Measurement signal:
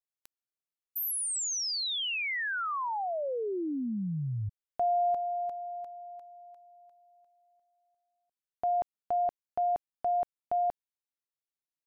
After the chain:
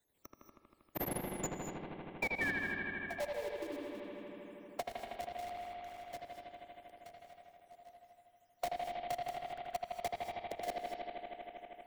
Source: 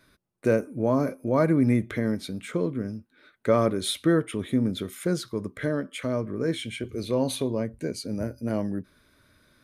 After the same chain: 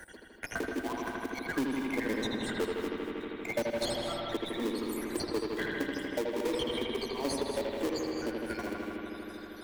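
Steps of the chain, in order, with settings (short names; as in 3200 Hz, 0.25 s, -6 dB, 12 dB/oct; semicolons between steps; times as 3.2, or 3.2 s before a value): random spectral dropouts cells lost 76%; reverb removal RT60 1.9 s; steep high-pass 260 Hz 48 dB/oct; bell 870 Hz -12.5 dB 0.29 oct; harmonic-percussive split harmonic -17 dB; dynamic EQ 4800 Hz, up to +6 dB, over -53 dBFS, Q 0.74; in parallel at -3.5 dB: sample-rate reducer 1400 Hz, jitter 20%; on the sum: soft clip -24 dBFS; analogue delay 79 ms, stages 2048, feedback 79%, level -3 dB; non-linear reverb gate 0.25 s rising, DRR 9.5 dB; three-band squash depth 70%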